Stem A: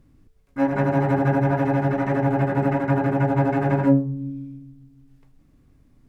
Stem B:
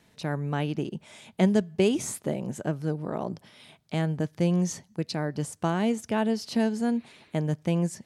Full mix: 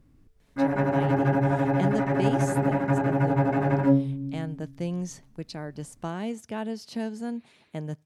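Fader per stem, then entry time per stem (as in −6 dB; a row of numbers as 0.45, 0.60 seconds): −3.0, −6.5 decibels; 0.00, 0.40 seconds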